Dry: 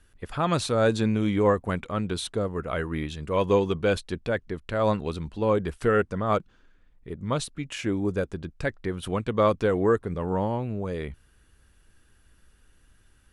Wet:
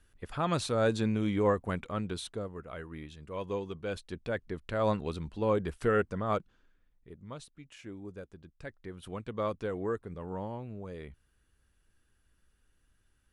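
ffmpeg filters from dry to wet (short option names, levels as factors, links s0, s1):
-af "volume=2.82,afade=t=out:st=1.91:d=0.74:silence=0.398107,afade=t=in:st=3.84:d=0.71:silence=0.375837,afade=t=out:st=6.08:d=1.28:silence=0.237137,afade=t=in:st=8.43:d=0.83:silence=0.501187"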